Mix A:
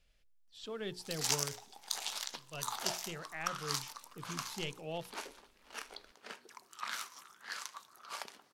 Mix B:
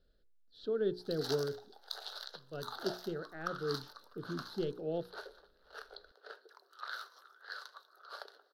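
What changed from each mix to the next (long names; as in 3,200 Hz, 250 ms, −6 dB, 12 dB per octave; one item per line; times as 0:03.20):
background: add high-pass filter 530 Hz 24 dB per octave
master: add drawn EQ curve 130 Hz 0 dB, 420 Hz +11 dB, 1,000 Hz −10 dB, 1,500 Hz +4 dB, 2,300 Hz −24 dB, 4,100 Hz +1 dB, 7,200 Hz −25 dB, 14,000 Hz −10 dB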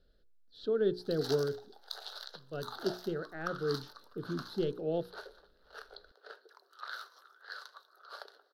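speech +3.5 dB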